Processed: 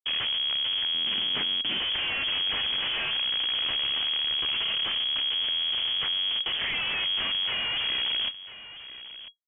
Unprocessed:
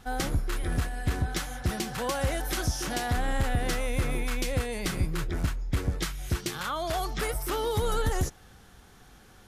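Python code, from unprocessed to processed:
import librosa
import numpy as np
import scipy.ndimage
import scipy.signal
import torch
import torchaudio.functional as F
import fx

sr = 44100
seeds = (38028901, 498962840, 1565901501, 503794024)

y = fx.schmitt(x, sr, flips_db=-32.5)
y = fx.freq_invert(y, sr, carrier_hz=3300)
y = fx.peak_eq(y, sr, hz=240.0, db=14.0, octaves=1.3, at=(0.94, 1.79))
y = y + 10.0 ** (-14.5 / 20.0) * np.pad(y, (int(996 * sr / 1000.0), 0))[:len(y)]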